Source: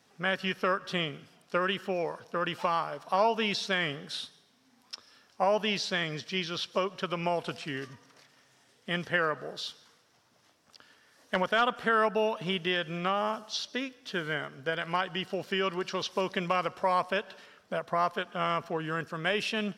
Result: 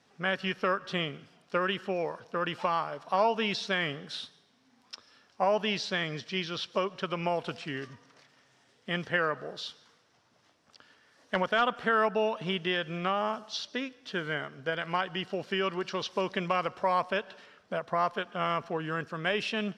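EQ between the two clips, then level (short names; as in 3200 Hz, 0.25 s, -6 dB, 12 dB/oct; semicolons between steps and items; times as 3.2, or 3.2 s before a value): air absorption 55 m; 0.0 dB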